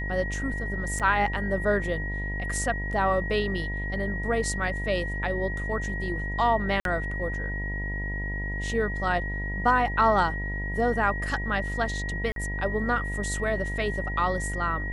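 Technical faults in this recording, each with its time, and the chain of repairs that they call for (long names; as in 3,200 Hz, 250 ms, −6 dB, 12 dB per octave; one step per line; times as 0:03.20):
mains buzz 50 Hz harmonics 20 −32 dBFS
whistle 1,900 Hz −33 dBFS
0:00.99–0:01.00: drop-out 7.2 ms
0:06.80–0:06.85: drop-out 52 ms
0:12.32–0:12.36: drop-out 42 ms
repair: notch filter 1,900 Hz, Q 30
hum removal 50 Hz, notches 20
repair the gap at 0:00.99, 7.2 ms
repair the gap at 0:06.80, 52 ms
repair the gap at 0:12.32, 42 ms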